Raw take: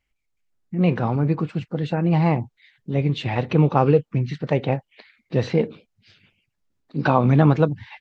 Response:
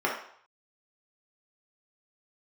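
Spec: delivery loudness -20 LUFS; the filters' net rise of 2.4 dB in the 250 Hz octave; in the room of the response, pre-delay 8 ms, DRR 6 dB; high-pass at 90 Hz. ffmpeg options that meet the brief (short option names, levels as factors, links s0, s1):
-filter_complex "[0:a]highpass=90,equalizer=f=250:t=o:g=4,asplit=2[s0][s1];[1:a]atrim=start_sample=2205,adelay=8[s2];[s1][s2]afir=irnorm=-1:irlink=0,volume=0.119[s3];[s0][s3]amix=inputs=2:normalize=0,volume=0.891"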